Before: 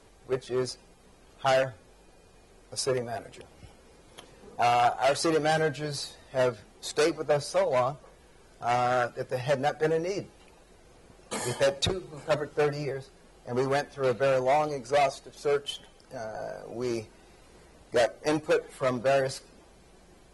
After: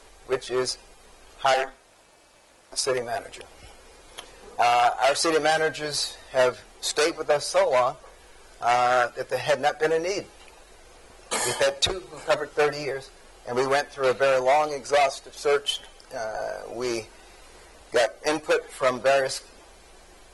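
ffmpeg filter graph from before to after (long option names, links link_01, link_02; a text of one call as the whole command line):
ffmpeg -i in.wav -filter_complex "[0:a]asettb=1/sr,asplit=3[link_01][link_02][link_03];[link_01]atrim=end=1.544[link_04];[link_02]atrim=start=1.54:end=2.84,asetpts=PTS-STARTPTS,afade=type=in:duration=0.004:curve=qsin,afade=type=out:start_time=1.296:duration=0.004:curve=qsin,lowshelf=frequency=210:gain=-8,aeval=exprs='val(0)*sin(2*PI*140*n/s)':channel_layout=same[link_05];[link_03]atrim=start=2.836[link_06];[link_04][link_05]acrossfade=duration=0.004:curve1=hsin:curve2=qsin[link_07];[link_07][link_06]acrossfade=duration=0.004:curve1=qsin:curve2=hsin,equalizer=frequency=150:width=0.55:gain=-14.5,alimiter=limit=-19dB:level=0:latency=1:release=431,volume=9dB" out.wav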